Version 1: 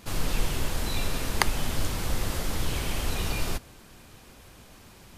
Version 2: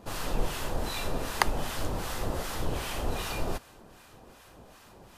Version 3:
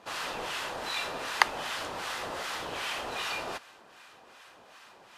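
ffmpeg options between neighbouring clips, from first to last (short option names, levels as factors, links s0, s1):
-filter_complex "[0:a]equalizer=f=700:t=o:w=2.4:g=8,bandreject=f=2200:w=16,acrossover=split=960[s0][s1];[s0]aeval=exprs='val(0)*(1-0.7/2+0.7/2*cos(2*PI*2.6*n/s))':c=same[s2];[s1]aeval=exprs='val(0)*(1-0.7/2-0.7/2*cos(2*PI*2.6*n/s))':c=same[s3];[s2][s3]amix=inputs=2:normalize=0,volume=0.794"
-af "bandpass=f=2200:t=q:w=0.6:csg=0,volume=1.78"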